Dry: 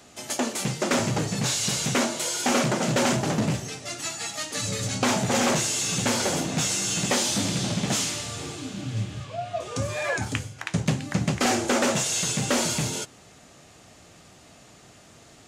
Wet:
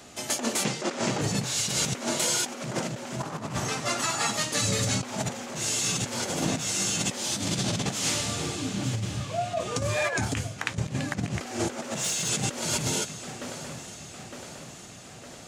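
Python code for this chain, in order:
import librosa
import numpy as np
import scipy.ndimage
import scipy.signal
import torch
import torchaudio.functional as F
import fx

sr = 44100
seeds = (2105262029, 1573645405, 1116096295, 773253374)

y = fx.bandpass_edges(x, sr, low_hz=220.0, high_hz=7500.0, at=(0.63, 1.2), fade=0.02)
y = fx.peak_eq(y, sr, hz=1100.0, db=11.5, octaves=1.0, at=(3.2, 4.32))
y = fx.echo_feedback(y, sr, ms=910, feedback_pct=57, wet_db=-18)
y = fx.over_compress(y, sr, threshold_db=-28.0, ratio=-0.5)
y = fx.clip_hard(y, sr, threshold_db=-24.0, at=(11.76, 12.29))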